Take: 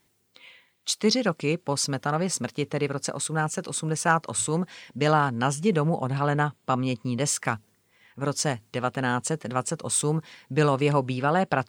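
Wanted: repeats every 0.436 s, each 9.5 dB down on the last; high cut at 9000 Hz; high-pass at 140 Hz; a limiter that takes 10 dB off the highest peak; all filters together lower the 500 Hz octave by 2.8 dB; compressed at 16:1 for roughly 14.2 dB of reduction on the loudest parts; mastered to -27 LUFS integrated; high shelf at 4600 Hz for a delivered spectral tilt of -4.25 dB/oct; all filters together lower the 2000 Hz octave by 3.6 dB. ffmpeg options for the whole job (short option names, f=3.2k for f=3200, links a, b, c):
-af "highpass=140,lowpass=9k,equalizer=f=500:t=o:g=-3,equalizer=f=2k:t=o:g=-4.5,highshelf=f=4.6k:g=-3.5,acompressor=threshold=-32dB:ratio=16,alimiter=level_in=3dB:limit=-24dB:level=0:latency=1,volume=-3dB,aecho=1:1:436|872|1308|1744:0.335|0.111|0.0365|0.012,volume=12dB"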